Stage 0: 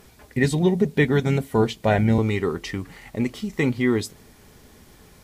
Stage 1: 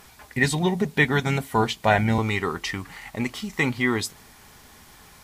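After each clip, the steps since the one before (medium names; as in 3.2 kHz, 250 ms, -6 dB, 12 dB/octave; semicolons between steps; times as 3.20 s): resonant low shelf 650 Hz -7 dB, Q 1.5; trim +4 dB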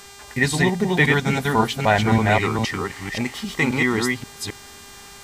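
chunks repeated in reverse 265 ms, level -2 dB; mains buzz 400 Hz, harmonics 22, -46 dBFS -1 dB/octave; trim +1.5 dB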